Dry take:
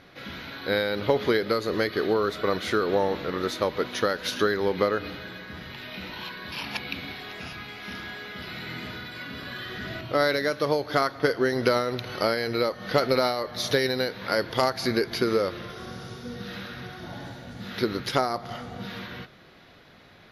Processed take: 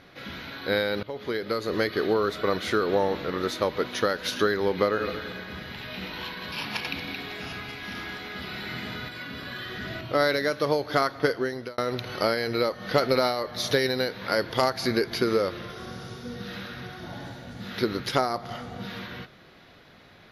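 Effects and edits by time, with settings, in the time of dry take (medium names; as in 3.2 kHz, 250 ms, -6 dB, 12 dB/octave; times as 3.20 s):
1.03–1.79 s: fade in, from -19 dB
4.87–9.09 s: backward echo that repeats 114 ms, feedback 43%, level -4 dB
11.23–11.78 s: fade out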